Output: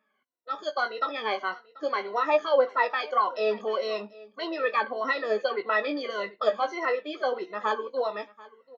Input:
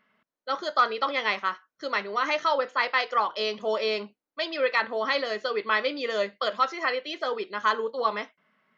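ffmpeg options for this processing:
ffmpeg -i in.wav -filter_complex "[0:a]afftfilt=real='re*pow(10,21/40*sin(2*PI*(2*log(max(b,1)*sr/1024/100)/log(2)-(-1.7)*(pts-256)/sr)))':imag='im*pow(10,21/40*sin(2*PI*(2*log(max(b,1)*sr/1024/100)/log(2)-(-1.7)*(pts-256)/sr)))':win_size=1024:overlap=0.75,highpass=280,acrossover=split=1200[link_01][link_02];[link_01]dynaudnorm=framelen=160:gausssize=13:maxgain=8dB[link_03];[link_02]flanger=delay=15.5:depth=5:speed=0.39[link_04];[link_03][link_04]amix=inputs=2:normalize=0,aecho=1:1:737:0.0841,volume=-7.5dB" out.wav

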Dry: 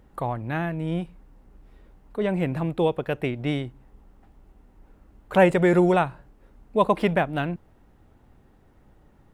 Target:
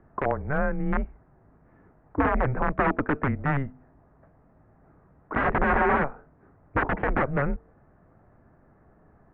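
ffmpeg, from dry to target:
ffmpeg -i in.wav -af "aeval=exprs='(mod(8.41*val(0)+1,2)-1)/8.41':channel_layout=same,bandreject=frequency=197.1:width_type=h:width=4,bandreject=frequency=394.2:width_type=h:width=4,bandreject=frequency=591.3:width_type=h:width=4,bandreject=frequency=788.4:width_type=h:width=4,highpass=frequency=160:width_type=q:width=0.5412,highpass=frequency=160:width_type=q:width=1.307,lowpass=frequency=2000:width_type=q:width=0.5176,lowpass=frequency=2000:width_type=q:width=0.7071,lowpass=frequency=2000:width_type=q:width=1.932,afreqshift=-140,volume=4dB" out.wav

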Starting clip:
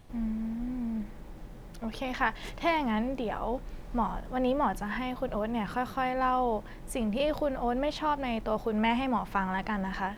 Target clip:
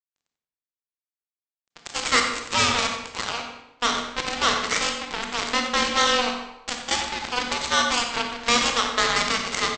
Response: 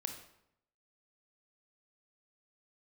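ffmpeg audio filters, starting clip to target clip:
-filter_complex "[0:a]asplit=2[link_01][link_02];[link_02]highpass=frequency=720:poles=1,volume=26dB,asoftclip=type=tanh:threshold=-13dB[link_03];[link_01][link_03]amix=inputs=2:normalize=0,lowpass=frequency=4600:poles=1,volume=-6dB,lowshelf=frequency=78:gain=8.5,asplit=2[link_04][link_05];[link_05]asoftclip=type=tanh:threshold=-21dB,volume=-11.5dB[link_06];[link_04][link_06]amix=inputs=2:normalize=0,afreqshift=230,equalizer=frequency=260:width=0.5:gain=-14.5,aresample=16000,acrusher=bits=2:mix=0:aa=0.5,aresample=44100,asplit=2[link_07][link_08];[link_08]adelay=95,lowpass=frequency=3900:poles=1,volume=-9dB,asplit=2[link_09][link_10];[link_10]adelay=95,lowpass=frequency=3900:poles=1,volume=0.35,asplit=2[link_11][link_12];[link_12]adelay=95,lowpass=frequency=3900:poles=1,volume=0.35,asplit=2[link_13][link_14];[link_14]adelay=95,lowpass=frequency=3900:poles=1,volume=0.35[link_15];[link_07][link_09][link_11][link_13][link_15]amix=inputs=5:normalize=0[link_16];[1:a]atrim=start_sample=2205,asetrate=36603,aresample=44100[link_17];[link_16][link_17]afir=irnorm=-1:irlink=0,asetrate=45938,aresample=44100,volume=5.5dB"

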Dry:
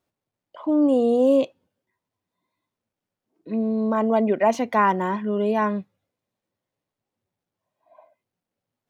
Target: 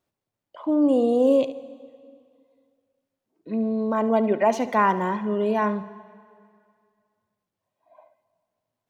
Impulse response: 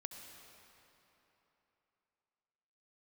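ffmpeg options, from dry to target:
-filter_complex "[0:a]asplit=2[link_01][link_02];[1:a]atrim=start_sample=2205,asetrate=66150,aresample=44100,adelay=71[link_03];[link_02][link_03]afir=irnorm=-1:irlink=0,volume=-6dB[link_04];[link_01][link_04]amix=inputs=2:normalize=0,volume=-1dB"

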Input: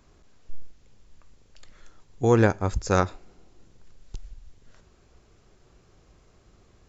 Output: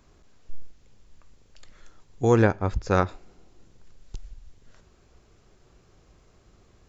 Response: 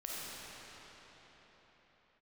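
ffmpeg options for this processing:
-filter_complex "[0:a]asettb=1/sr,asplit=3[link_01][link_02][link_03];[link_01]atrim=end=2.424[link_04];[link_02]atrim=start=2.42:end=3.09,asetpts=PTS-STARTPTS,afade=type=in:duration=0.004:curve=qsin,afade=type=out:start_time=0.666:duration=0.004:curve=qsin,lowpass=3900[link_05];[link_03]atrim=start=3.086[link_06];[link_04][link_05]acrossfade=duration=0.004:curve1=hsin:curve2=qsin[link_07];[link_07][link_06]acrossfade=duration=0.004:curve1=qsin:curve2=hsin"

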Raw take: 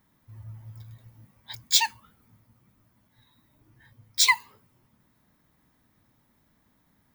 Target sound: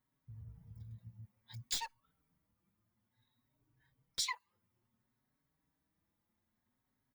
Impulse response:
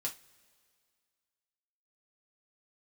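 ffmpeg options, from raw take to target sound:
-filter_complex "[0:a]afwtdn=0.02,acompressor=threshold=-35dB:ratio=6,asettb=1/sr,asplit=3[link_01][link_02][link_03];[link_01]atrim=end=1.734[link_04];[link_02]atrim=start=1.73:end=4.19,asetpts=PTS-STARTPTS,afade=type=in:duration=0.004:curve=qsin,afade=type=out:start_time=2.456:duration=0.004:curve=qsin,aeval=exprs='clip(val(0),-1,0.0133)':channel_layout=same[link_05];[link_03]atrim=start=4.186[link_06];[link_04][link_05]acrossfade=duration=0.004:curve1=hsin:curve2=qsin[link_07];[link_07][link_06]acrossfade=duration=0.004:curve1=qsin:curve2=hsin,asplit=2[link_08][link_09];[link_09]adelay=4.9,afreqshift=0.57[link_10];[link_08][link_10]amix=inputs=2:normalize=1,volume=2.5dB"

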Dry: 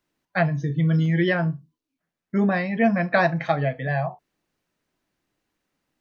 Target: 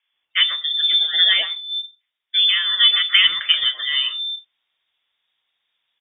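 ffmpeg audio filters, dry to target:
ffmpeg -i in.wav -filter_complex "[0:a]acrossover=split=150|2600[link_01][link_02][link_03];[link_03]adelay=130[link_04];[link_01]adelay=290[link_05];[link_05][link_02][link_04]amix=inputs=3:normalize=0,lowpass=frequency=3100:width_type=q:width=0.5098,lowpass=frequency=3100:width_type=q:width=0.6013,lowpass=frequency=3100:width_type=q:width=0.9,lowpass=frequency=3100:width_type=q:width=2.563,afreqshift=-3700,volume=5.5dB" out.wav

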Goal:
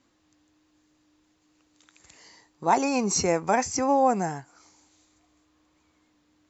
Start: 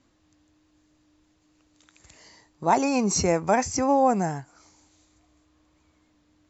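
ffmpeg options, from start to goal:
ffmpeg -i in.wav -af "lowshelf=frequency=140:gain=-10,bandreject=frequency=620:width=12" out.wav

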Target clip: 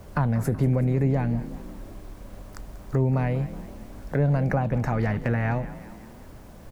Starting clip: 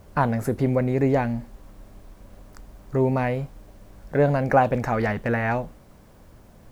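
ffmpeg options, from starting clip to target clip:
ffmpeg -i in.wav -filter_complex "[0:a]acrossover=split=180[link_01][link_02];[link_02]acompressor=threshold=-33dB:ratio=4[link_03];[link_01][link_03]amix=inputs=2:normalize=0,asplit=6[link_04][link_05][link_06][link_07][link_08][link_09];[link_05]adelay=188,afreqshift=35,volume=-16dB[link_10];[link_06]adelay=376,afreqshift=70,volume=-21.2dB[link_11];[link_07]adelay=564,afreqshift=105,volume=-26.4dB[link_12];[link_08]adelay=752,afreqshift=140,volume=-31.6dB[link_13];[link_09]adelay=940,afreqshift=175,volume=-36.8dB[link_14];[link_04][link_10][link_11][link_12][link_13][link_14]amix=inputs=6:normalize=0,volume=4.5dB" out.wav

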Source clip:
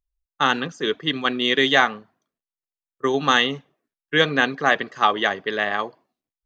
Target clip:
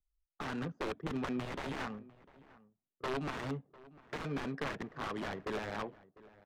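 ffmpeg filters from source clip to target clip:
ffmpeg -i in.wav -filter_complex "[0:a]acrossover=split=200|1800[link_01][link_02][link_03];[link_01]alimiter=level_in=11dB:limit=-24dB:level=0:latency=1,volume=-11dB[link_04];[link_02]acompressor=threshold=-30dB:ratio=5[link_05];[link_04][link_05][link_03]amix=inputs=3:normalize=0,aeval=exprs='(mod(15.8*val(0)+1,2)-1)/15.8':channel_layout=same,adynamicsmooth=sensitivity=2.5:basefreq=540,asplit=2[link_06][link_07];[link_07]adelay=699.7,volume=-20dB,highshelf=frequency=4000:gain=-15.7[link_08];[link_06][link_08]amix=inputs=2:normalize=0,volume=-2.5dB" out.wav

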